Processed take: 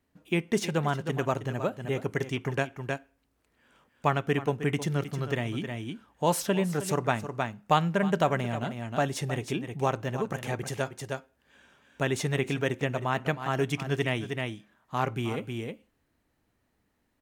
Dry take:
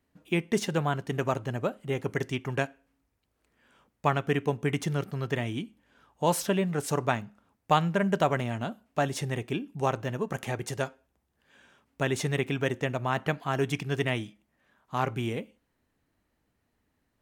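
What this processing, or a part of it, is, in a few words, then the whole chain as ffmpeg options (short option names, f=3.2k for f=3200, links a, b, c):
ducked delay: -filter_complex "[0:a]asplit=3[a][b][c];[b]adelay=313,volume=-3.5dB[d];[c]apad=whole_len=773091[e];[d][e]sidechaincompress=threshold=-37dB:ratio=8:attack=20:release=187[f];[a][f]amix=inputs=2:normalize=0"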